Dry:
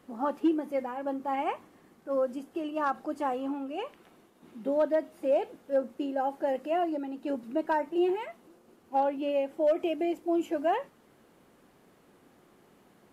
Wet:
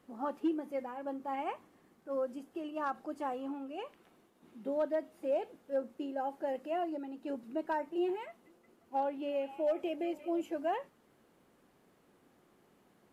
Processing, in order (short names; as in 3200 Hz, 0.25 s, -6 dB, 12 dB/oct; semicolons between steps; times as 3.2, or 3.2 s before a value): 8.28–10.41 delay with a stepping band-pass 0.177 s, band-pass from 2900 Hz, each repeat -0.7 oct, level -9.5 dB; gain -6.5 dB